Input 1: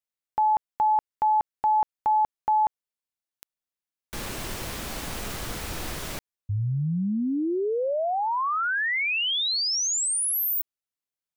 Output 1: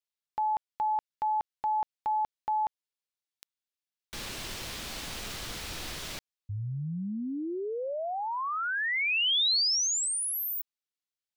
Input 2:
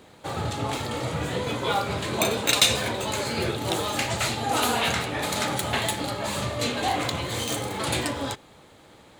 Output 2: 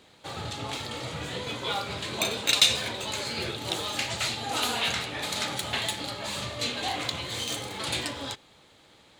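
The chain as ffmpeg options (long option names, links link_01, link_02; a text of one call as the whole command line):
ffmpeg -i in.wav -af "equalizer=frequency=3900:width=0.63:gain=8.5,volume=-8dB" out.wav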